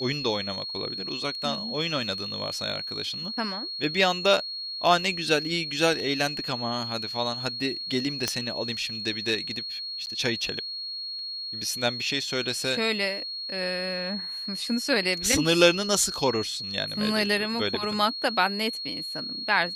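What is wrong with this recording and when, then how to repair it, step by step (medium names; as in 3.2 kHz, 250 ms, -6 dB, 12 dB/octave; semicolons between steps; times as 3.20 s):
whine 4.3 kHz -32 dBFS
8.28 s: pop -9 dBFS
10.06–10.07 s: dropout 9.8 ms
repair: de-click; band-stop 4.3 kHz, Q 30; interpolate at 10.06 s, 9.8 ms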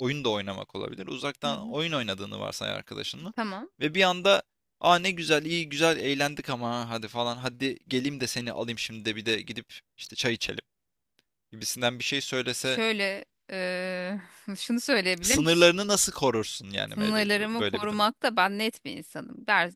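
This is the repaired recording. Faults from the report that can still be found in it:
nothing left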